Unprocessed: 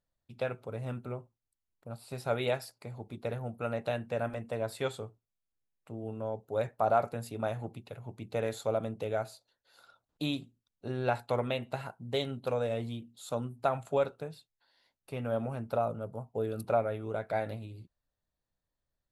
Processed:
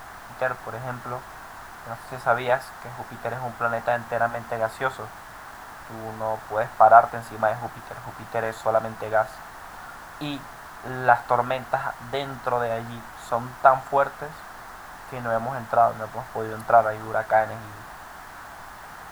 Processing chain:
background noise pink −49 dBFS
flat-topped bell 1,100 Hz +15 dB
level +1 dB

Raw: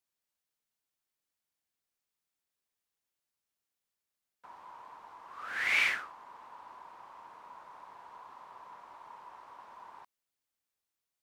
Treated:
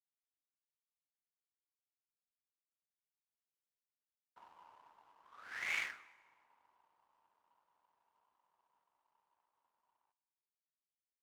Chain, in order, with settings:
source passing by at 0:03.58, 9 m/s, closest 2.7 metres
power curve on the samples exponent 1.4
dense smooth reverb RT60 1.7 s, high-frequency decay 0.7×, DRR 17.5 dB
level +9.5 dB

